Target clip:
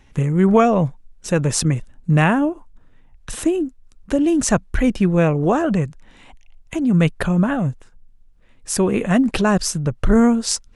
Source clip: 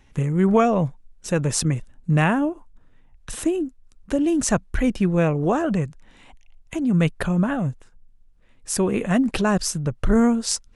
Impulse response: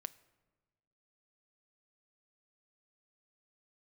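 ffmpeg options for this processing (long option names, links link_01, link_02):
-af "highshelf=frequency=10000:gain=-3,volume=3.5dB"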